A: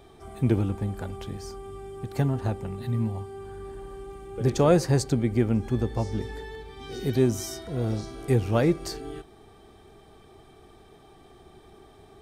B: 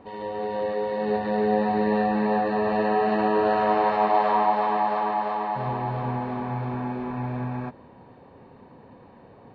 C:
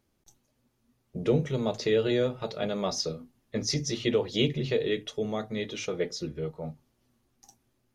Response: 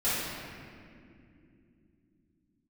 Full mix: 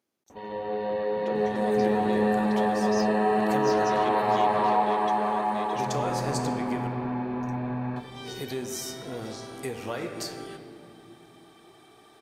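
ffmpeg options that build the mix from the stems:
-filter_complex "[0:a]highpass=f=880:p=1,adelay=1350,volume=2.5dB,asplit=3[a][b][c];[a]atrim=end=6.87,asetpts=PTS-STARTPTS,afade=t=out:st=6.866:d=0.004:c=hsin[d];[b]atrim=start=6.87:end=7.96,asetpts=PTS-STARTPTS,volume=0[e];[c]atrim=start=7.96,asetpts=PTS-STARTPTS,afade=t=in:d=0.004:c=hsin[f];[d][e][f]concat=n=3:v=0:a=1,asplit=2[g][h];[h]volume=-20.5dB[i];[1:a]acontrast=66,adelay=300,volume=-9dB,asplit=2[j][k];[k]volume=-21.5dB[l];[2:a]highpass=250,asoftclip=type=tanh:threshold=-22dB,volume=-5dB[m];[g][m]amix=inputs=2:normalize=0,acompressor=threshold=-32dB:ratio=6,volume=0dB[n];[3:a]atrim=start_sample=2205[o];[i][l]amix=inputs=2:normalize=0[p];[p][o]afir=irnorm=-1:irlink=0[q];[j][n][q]amix=inputs=3:normalize=0"

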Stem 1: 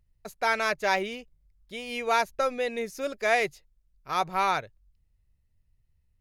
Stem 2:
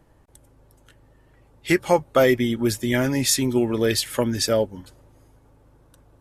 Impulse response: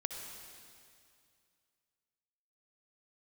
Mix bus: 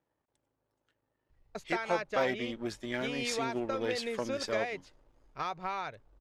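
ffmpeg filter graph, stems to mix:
-filter_complex "[0:a]acompressor=threshold=-32dB:ratio=16,adelay=1300,volume=0.5dB[a];[1:a]aeval=exprs='if(lt(val(0),0),0.447*val(0),val(0))':c=same,highpass=f=310:p=1,volume=-9.5dB,afade=t=in:st=1.48:d=0.38:silence=0.375837[b];[a][b]amix=inputs=2:normalize=0,lowpass=5.4k"

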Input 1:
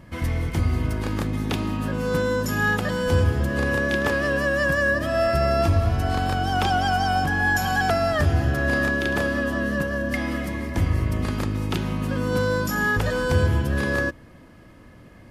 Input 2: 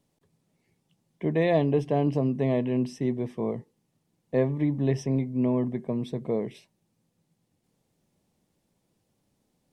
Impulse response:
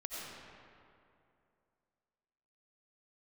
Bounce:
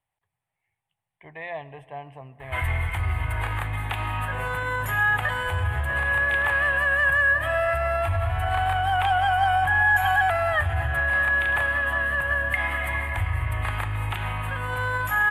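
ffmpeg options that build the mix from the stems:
-filter_complex "[0:a]alimiter=limit=-19.5dB:level=0:latency=1:release=102,adelay=2400,volume=2dB[a];[1:a]volume=-10dB,asplit=2[b][c];[c]volume=-18dB[d];[2:a]atrim=start_sample=2205[e];[d][e]afir=irnorm=-1:irlink=0[f];[a][b][f]amix=inputs=3:normalize=0,firequalizer=gain_entry='entry(110,0);entry(190,-21);entry(530,-8);entry(770,7);entry(1300,4);entry(1900,9);entry(3300,1);entry(5300,-23);entry(8400,0)':delay=0.05:min_phase=1"

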